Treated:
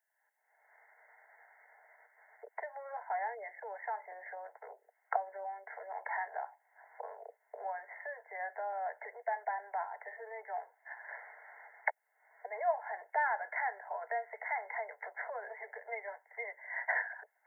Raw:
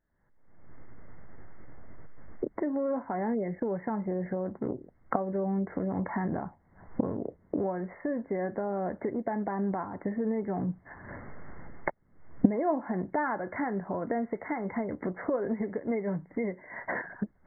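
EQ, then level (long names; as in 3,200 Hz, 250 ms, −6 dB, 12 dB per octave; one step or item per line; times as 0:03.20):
Butterworth high-pass 480 Hz 96 dB per octave
high-shelf EQ 2,000 Hz +9.5 dB
phaser with its sweep stopped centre 790 Hz, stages 8
−1.0 dB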